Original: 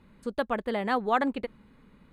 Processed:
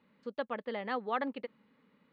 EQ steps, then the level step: speaker cabinet 300–4300 Hz, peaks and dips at 360 Hz -10 dB, 700 Hz -7 dB, 1000 Hz -5 dB, 1500 Hz -6 dB, 2400 Hz -4 dB, 3700 Hz -5 dB; -3.0 dB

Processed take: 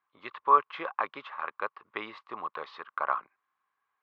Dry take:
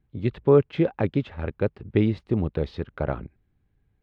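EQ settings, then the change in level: resonant high-pass 1100 Hz, resonance Q 11; air absorption 110 m; -1.5 dB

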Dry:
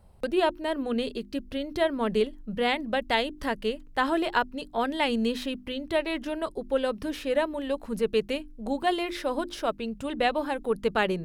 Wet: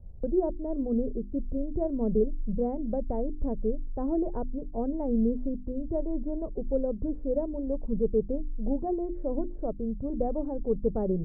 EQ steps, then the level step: ladder low-pass 750 Hz, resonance 25%; tilt -4.5 dB/oct; -2.5 dB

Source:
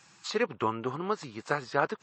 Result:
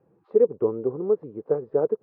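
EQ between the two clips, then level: synth low-pass 460 Hz, resonance Q 4.9; air absorption 160 m; 0.0 dB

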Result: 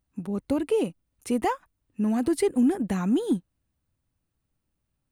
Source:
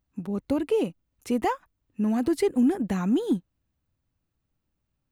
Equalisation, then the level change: bell 9200 Hz +9 dB 0.24 oct; 0.0 dB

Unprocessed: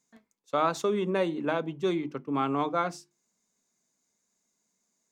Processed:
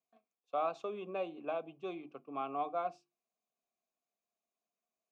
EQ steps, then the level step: vowel filter a; bell 1000 Hz -8.5 dB 2 oct; high shelf 7500 Hz -10.5 dB; +7.0 dB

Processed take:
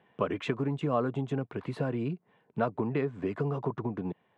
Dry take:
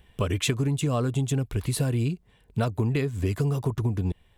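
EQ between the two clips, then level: HPF 150 Hz 24 dB/oct; LPF 1100 Hz 12 dB/oct; tilt shelf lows -6 dB, about 650 Hz; +1.5 dB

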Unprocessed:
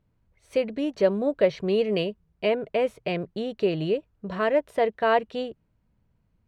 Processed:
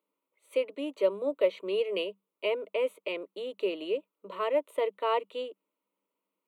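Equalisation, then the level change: rippled Chebyshev high-pass 190 Hz, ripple 6 dB; high shelf 4400 Hz +10.5 dB; fixed phaser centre 1100 Hz, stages 8; 0.0 dB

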